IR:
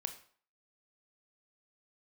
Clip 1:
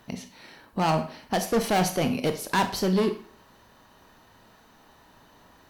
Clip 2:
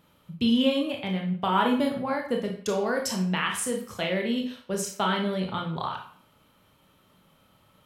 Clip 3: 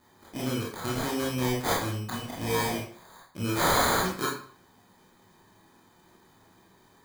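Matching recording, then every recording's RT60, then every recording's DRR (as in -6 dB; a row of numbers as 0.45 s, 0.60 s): 1; 0.50 s, 0.50 s, 0.50 s; 7.0 dB, 1.5 dB, -5.0 dB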